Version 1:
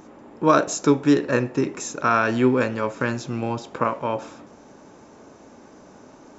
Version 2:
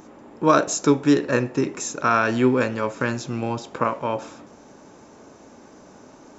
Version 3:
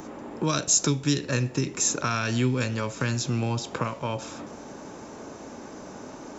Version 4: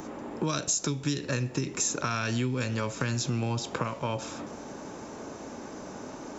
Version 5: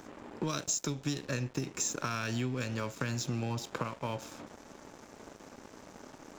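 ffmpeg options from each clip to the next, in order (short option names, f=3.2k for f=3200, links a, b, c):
-af "highshelf=f=5.2k:g=4"
-filter_complex "[0:a]acrossover=split=150|3000[a][b][c];[b]acompressor=threshold=-35dB:ratio=6[d];[a][d][c]amix=inputs=3:normalize=0,volume=6dB"
-af "acompressor=threshold=-25dB:ratio=6"
-af "aeval=exprs='sgn(val(0))*max(abs(val(0))-0.0075,0)':c=same,volume=-3.5dB"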